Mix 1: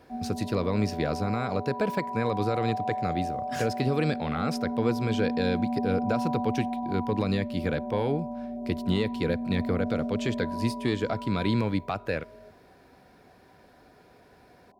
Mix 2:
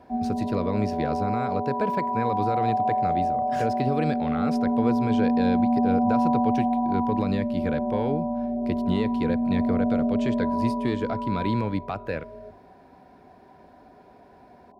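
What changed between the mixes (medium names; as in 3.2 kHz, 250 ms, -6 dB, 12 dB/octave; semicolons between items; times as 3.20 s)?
background +8.0 dB; master: add treble shelf 3.5 kHz -8.5 dB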